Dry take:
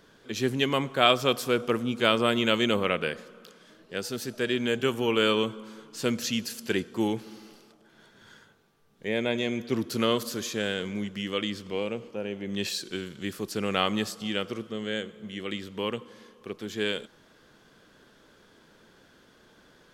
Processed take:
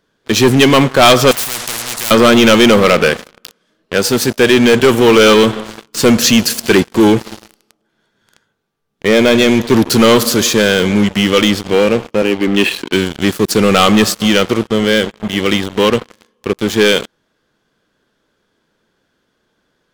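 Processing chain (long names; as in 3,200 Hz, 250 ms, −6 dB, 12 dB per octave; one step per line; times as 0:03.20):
0:12.22–0:12.93: loudspeaker in its box 240–3,000 Hz, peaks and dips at 280 Hz +8 dB, 590 Hz −7 dB, 2,800 Hz +5 dB
leveller curve on the samples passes 5
0:01.31–0:02.11: every bin compressed towards the loudest bin 10 to 1
level +3 dB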